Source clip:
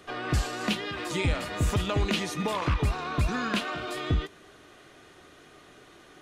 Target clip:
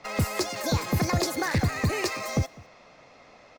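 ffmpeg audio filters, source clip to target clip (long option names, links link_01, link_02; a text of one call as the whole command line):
ffmpeg -i in.wav -filter_complex "[0:a]equalizer=frequency=1800:width=4.5:gain=-10.5,acrossover=split=400|3100[link_01][link_02][link_03];[link_03]acrusher=bits=7:mix=0:aa=0.000001[link_04];[link_01][link_02][link_04]amix=inputs=3:normalize=0,aecho=1:1:349:0.0668,asetrate=76440,aresample=44100,volume=1.5dB" out.wav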